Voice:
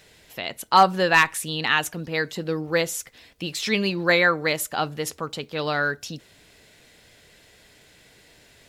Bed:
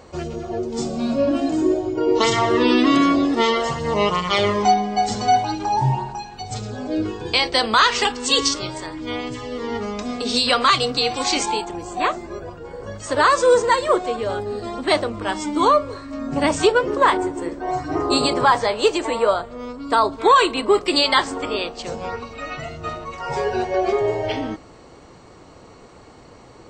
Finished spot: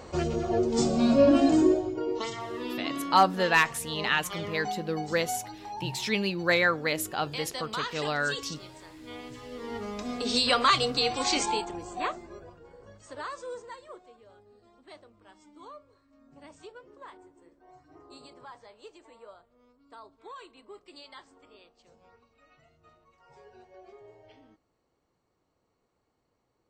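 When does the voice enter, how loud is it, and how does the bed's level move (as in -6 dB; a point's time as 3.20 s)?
2.40 s, -5.0 dB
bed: 1.55 s 0 dB
2.35 s -18.5 dB
8.79 s -18.5 dB
10.26 s -6 dB
11.59 s -6 dB
14.22 s -31.5 dB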